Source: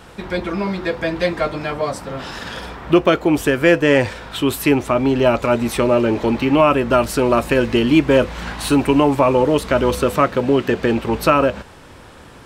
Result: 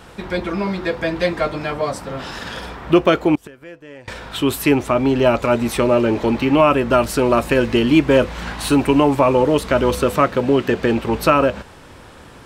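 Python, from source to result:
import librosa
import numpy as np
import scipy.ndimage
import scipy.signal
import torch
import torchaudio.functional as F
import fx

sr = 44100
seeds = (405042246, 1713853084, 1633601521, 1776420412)

y = fx.gate_flip(x, sr, shuts_db=-14.0, range_db=-25, at=(3.35, 4.08))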